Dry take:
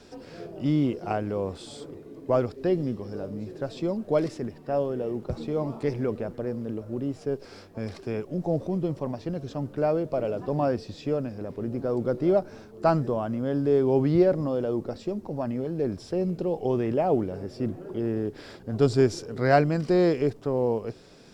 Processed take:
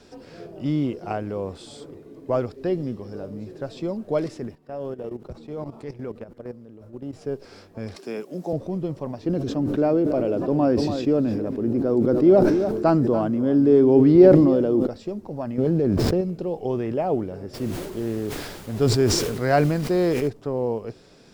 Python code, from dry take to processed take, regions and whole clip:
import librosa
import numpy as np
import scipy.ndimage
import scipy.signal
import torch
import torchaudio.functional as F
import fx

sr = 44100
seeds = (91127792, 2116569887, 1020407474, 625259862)

y = fx.chain(x, sr, fx.level_steps(step_db=15),
    fx.transient(attack_db=-5, sustain_db=1), at=(4.55, 7.13))
y = fx.chain(y, sr, fx.highpass(hz=190.0, slope=24),
    fx.high_shelf(hz=4200.0, db=10.0), at=(7.96, 8.53))
y = fx.chain(y, sr, fx.peak_eq(hz=300.0, db=10.0, octaves=1.0),
    fx.echo_single(ms=285, db=-14.5),
    fx.sustainer(db_per_s=30.0), at=(9.23, 14.87))
y = fx.chain(y, sr, fx.median_filter(points=15),
    fx.peak_eq(hz=180.0, db=5.5, octaves=2.9),
    fx.env_flatten(amount_pct=100), at=(15.58, 16.21))
y = fx.dmg_noise_colour(y, sr, seeds[0], colour='pink', level_db=-46.0, at=(17.53, 20.27), fade=0.02)
y = fx.sustainer(y, sr, db_per_s=38.0, at=(17.53, 20.27), fade=0.02)